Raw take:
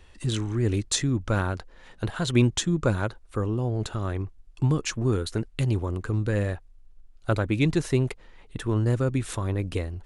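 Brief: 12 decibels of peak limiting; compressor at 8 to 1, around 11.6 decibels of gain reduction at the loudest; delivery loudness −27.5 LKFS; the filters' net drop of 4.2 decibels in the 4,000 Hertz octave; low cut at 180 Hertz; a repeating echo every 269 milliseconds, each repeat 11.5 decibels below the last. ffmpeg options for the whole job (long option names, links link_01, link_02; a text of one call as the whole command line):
ffmpeg -i in.wav -af "highpass=180,equalizer=frequency=4000:width_type=o:gain=-5,acompressor=threshold=-31dB:ratio=8,alimiter=level_in=3dB:limit=-24dB:level=0:latency=1,volume=-3dB,aecho=1:1:269|538|807:0.266|0.0718|0.0194,volume=11.5dB" out.wav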